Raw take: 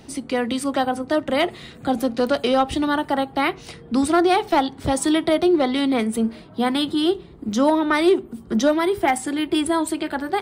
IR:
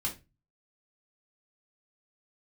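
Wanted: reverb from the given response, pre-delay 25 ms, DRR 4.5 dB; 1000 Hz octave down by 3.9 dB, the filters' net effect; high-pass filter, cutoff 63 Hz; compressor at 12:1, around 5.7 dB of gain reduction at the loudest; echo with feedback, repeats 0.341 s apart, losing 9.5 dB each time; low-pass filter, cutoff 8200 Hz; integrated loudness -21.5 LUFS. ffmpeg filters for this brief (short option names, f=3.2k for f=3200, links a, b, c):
-filter_complex "[0:a]highpass=63,lowpass=8.2k,equalizer=f=1k:t=o:g=-5.5,acompressor=threshold=-19dB:ratio=12,aecho=1:1:341|682|1023|1364:0.335|0.111|0.0365|0.012,asplit=2[a][b];[1:a]atrim=start_sample=2205,adelay=25[c];[b][c]afir=irnorm=-1:irlink=0,volume=-7.5dB[d];[a][d]amix=inputs=2:normalize=0,volume=1.5dB"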